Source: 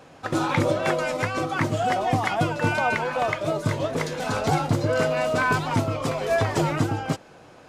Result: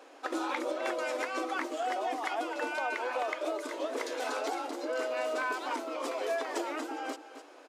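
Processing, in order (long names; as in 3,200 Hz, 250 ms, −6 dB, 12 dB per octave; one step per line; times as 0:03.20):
single-tap delay 259 ms −15.5 dB
downward compressor, threshold −25 dBFS, peak gain reduction 8.5 dB
linear-phase brick-wall high-pass 260 Hz
level −4 dB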